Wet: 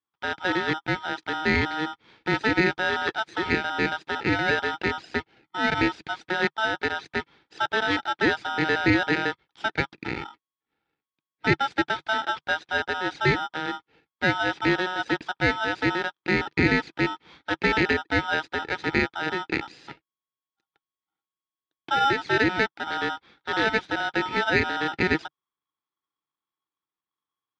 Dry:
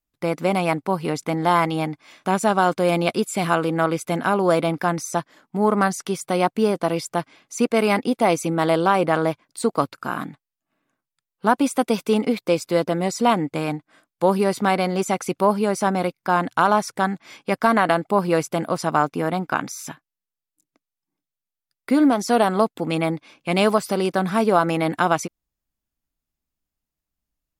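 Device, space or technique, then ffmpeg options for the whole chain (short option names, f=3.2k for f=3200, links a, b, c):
ring modulator pedal into a guitar cabinet: -af "aeval=exprs='val(0)*sgn(sin(2*PI*1100*n/s))':c=same,highpass=76,equalizer=f=150:t=q:w=4:g=4,equalizer=f=320:t=q:w=4:g=8,equalizer=f=610:t=q:w=4:g=-9,equalizer=f=1.1k:t=q:w=4:g=-9,equalizer=f=2.9k:t=q:w=4:g=-6,lowpass=f=3.7k:w=0.5412,lowpass=f=3.7k:w=1.3066,volume=-3dB"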